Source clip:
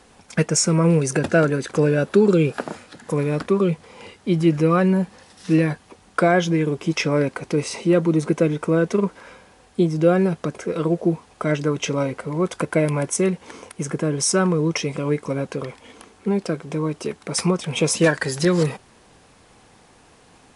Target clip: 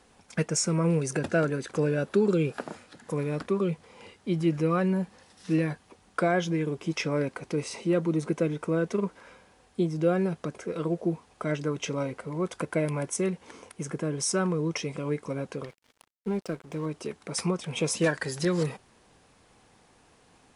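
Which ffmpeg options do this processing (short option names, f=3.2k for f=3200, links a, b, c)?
-filter_complex "[0:a]asettb=1/sr,asplit=3[a][b][c];[a]atrim=end=15.654[d];[b]atrim=start=15.65:end=16.86,asetpts=PTS-STARTPTS,afade=t=in:d=0.004:c=qsin,afade=t=out:st=1.206:d=0.004:c=qsin,aeval=exprs='sgn(val(0))*max(abs(val(0))-0.00944,0)':c=same[e];[c]atrim=start=16.856[f];[d][e]acrossfade=d=0.004:c1=hsin:c2=qsin[g];[g][f]acrossfade=d=0.004:c1=qsin:c2=hsin,volume=-8dB"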